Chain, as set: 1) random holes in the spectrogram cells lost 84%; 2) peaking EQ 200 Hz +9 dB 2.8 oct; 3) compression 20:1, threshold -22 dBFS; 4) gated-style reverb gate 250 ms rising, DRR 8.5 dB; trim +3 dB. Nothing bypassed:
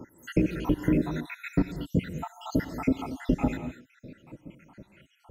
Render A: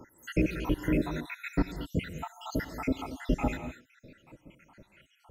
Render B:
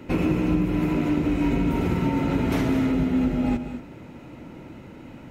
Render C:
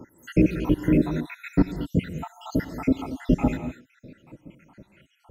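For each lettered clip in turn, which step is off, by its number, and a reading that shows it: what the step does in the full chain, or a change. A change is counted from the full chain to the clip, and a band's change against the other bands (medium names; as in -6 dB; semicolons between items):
2, 250 Hz band -4.0 dB; 1, crest factor change -7.0 dB; 3, mean gain reduction 1.5 dB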